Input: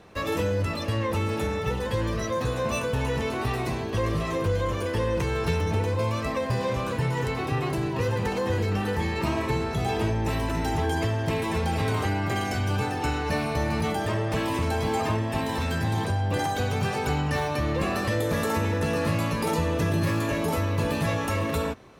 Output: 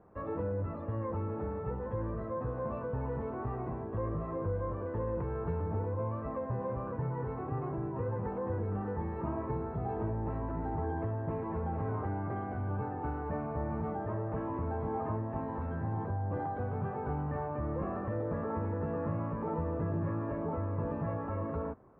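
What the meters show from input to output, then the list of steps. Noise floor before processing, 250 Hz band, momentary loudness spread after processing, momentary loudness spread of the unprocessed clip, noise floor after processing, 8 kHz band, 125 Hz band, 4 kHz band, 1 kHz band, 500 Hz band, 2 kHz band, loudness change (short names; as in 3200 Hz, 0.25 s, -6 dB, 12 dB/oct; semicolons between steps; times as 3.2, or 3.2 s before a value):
-30 dBFS, -8.5 dB, 2 LU, 2 LU, -39 dBFS, under -40 dB, -8.5 dB, under -40 dB, -9.0 dB, -8.5 dB, -19.0 dB, -9.0 dB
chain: LPF 1300 Hz 24 dB/oct; gain -8.5 dB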